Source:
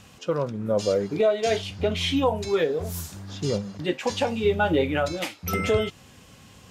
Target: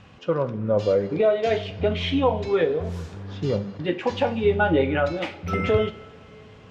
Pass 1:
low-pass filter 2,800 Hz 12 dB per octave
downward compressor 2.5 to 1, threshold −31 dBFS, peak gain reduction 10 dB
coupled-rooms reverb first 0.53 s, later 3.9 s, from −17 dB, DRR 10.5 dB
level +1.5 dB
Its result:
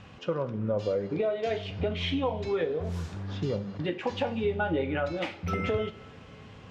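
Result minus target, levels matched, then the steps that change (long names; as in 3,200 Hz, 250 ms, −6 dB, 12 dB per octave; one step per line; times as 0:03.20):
downward compressor: peak gain reduction +10 dB
remove: downward compressor 2.5 to 1, threshold −31 dBFS, peak gain reduction 10 dB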